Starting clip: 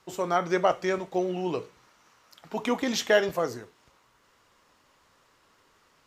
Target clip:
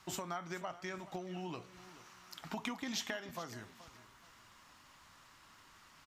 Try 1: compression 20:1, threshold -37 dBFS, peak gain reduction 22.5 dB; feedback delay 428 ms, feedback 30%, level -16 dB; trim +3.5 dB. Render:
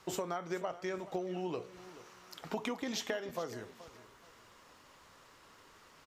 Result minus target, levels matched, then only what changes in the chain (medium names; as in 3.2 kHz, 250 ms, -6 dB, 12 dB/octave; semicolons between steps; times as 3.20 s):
500 Hz band +4.5 dB
add after compression: peaking EQ 460 Hz -13.5 dB 0.78 oct